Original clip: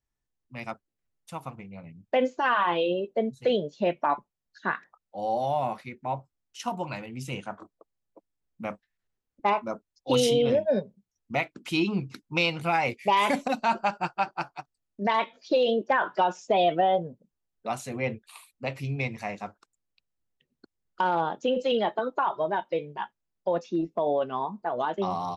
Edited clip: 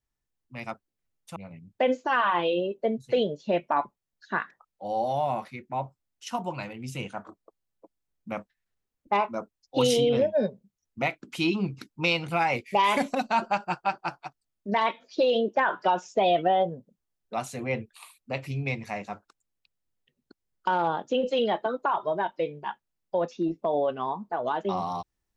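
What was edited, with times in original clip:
1.36–1.69 cut

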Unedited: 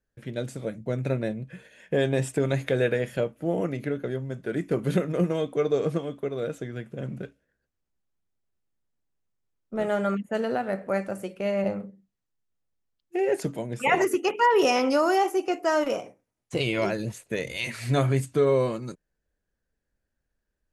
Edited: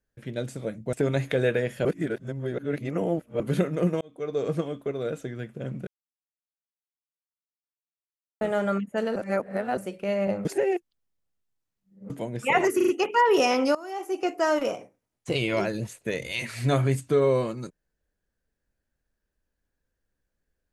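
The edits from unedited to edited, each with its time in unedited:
0.93–2.3 cut
3.22–4.77 reverse
5.38–5.94 fade in
7.24–9.78 mute
10.53–11.14 reverse
11.82–13.47 reverse
14.13 stutter 0.04 s, 4 plays
15–15.48 fade in quadratic, from -19 dB

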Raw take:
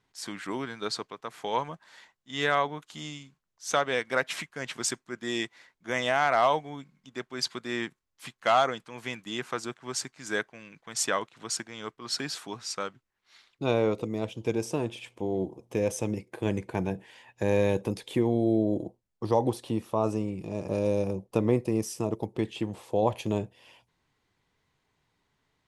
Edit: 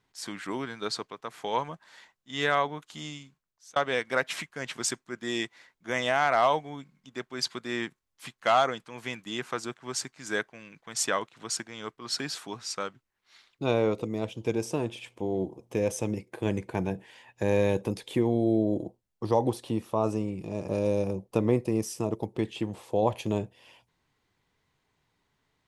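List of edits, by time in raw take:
3.07–3.76 fade out equal-power

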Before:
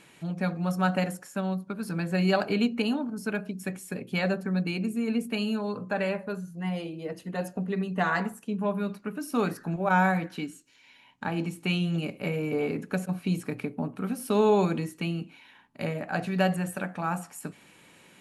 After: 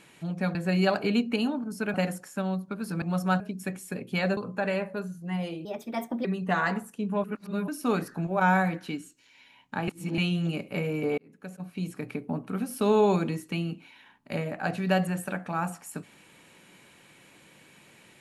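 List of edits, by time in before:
0.55–0.93 swap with 2.01–3.4
4.37–5.7 cut
6.98–7.74 speed 127%
8.73–9.17 reverse
11.37–11.67 reverse
12.67–13.84 fade in

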